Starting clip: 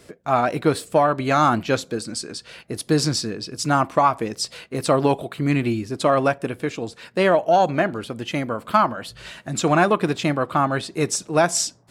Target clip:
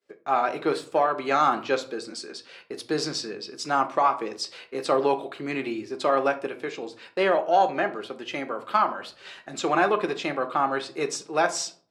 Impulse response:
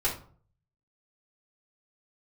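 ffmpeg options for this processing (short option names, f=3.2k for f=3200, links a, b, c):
-filter_complex "[0:a]acrossover=split=260 6700:gain=0.0891 1 0.2[a][b][c];[a][b][c]amix=inputs=3:normalize=0,agate=range=-33dB:threshold=-40dB:ratio=3:detection=peak,asplit=2[d][e];[1:a]atrim=start_sample=2205[f];[e][f]afir=irnorm=-1:irlink=0,volume=-12dB[g];[d][g]amix=inputs=2:normalize=0,volume=-6dB"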